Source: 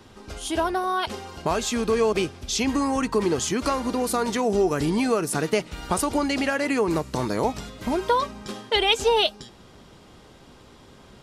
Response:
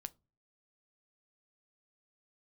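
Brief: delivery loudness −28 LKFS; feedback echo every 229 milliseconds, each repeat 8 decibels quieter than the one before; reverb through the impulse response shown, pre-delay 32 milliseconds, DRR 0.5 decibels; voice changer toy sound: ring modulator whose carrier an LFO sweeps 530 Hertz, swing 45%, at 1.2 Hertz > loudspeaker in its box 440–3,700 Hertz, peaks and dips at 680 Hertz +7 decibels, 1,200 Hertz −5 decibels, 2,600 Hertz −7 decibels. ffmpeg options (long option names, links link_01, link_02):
-filter_complex "[0:a]aecho=1:1:229|458|687|916|1145:0.398|0.159|0.0637|0.0255|0.0102,asplit=2[link_01][link_02];[1:a]atrim=start_sample=2205,adelay=32[link_03];[link_02][link_03]afir=irnorm=-1:irlink=0,volume=3.5dB[link_04];[link_01][link_04]amix=inputs=2:normalize=0,aeval=exprs='val(0)*sin(2*PI*530*n/s+530*0.45/1.2*sin(2*PI*1.2*n/s))':channel_layout=same,highpass=440,equalizer=frequency=680:width_type=q:width=4:gain=7,equalizer=frequency=1200:width_type=q:width=4:gain=-5,equalizer=frequency=2600:width_type=q:width=4:gain=-7,lowpass=frequency=3700:width=0.5412,lowpass=frequency=3700:width=1.3066,volume=-2.5dB"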